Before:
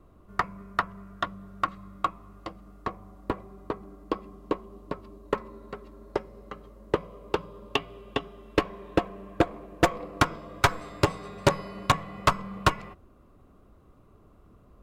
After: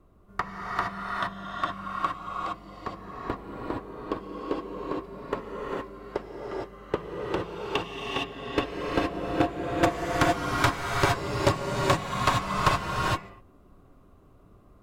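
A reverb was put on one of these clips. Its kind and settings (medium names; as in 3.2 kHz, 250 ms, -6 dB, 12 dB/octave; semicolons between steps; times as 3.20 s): gated-style reverb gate 490 ms rising, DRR -3 dB; trim -3.5 dB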